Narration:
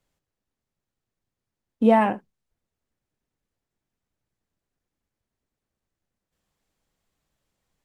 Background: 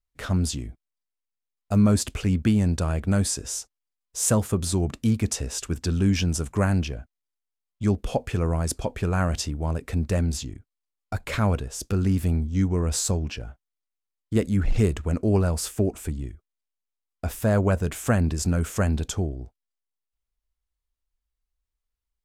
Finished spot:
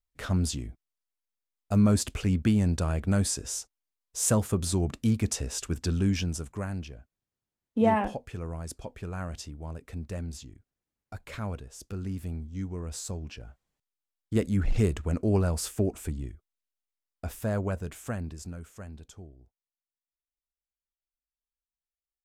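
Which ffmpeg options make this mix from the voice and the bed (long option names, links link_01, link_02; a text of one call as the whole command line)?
ffmpeg -i stem1.wav -i stem2.wav -filter_complex "[0:a]adelay=5950,volume=-6dB[link_01];[1:a]volume=5.5dB,afade=type=out:start_time=5.89:duration=0.74:silence=0.354813,afade=type=in:start_time=13.04:duration=1.35:silence=0.375837,afade=type=out:start_time=16.44:duration=2.27:silence=0.149624[link_02];[link_01][link_02]amix=inputs=2:normalize=0" out.wav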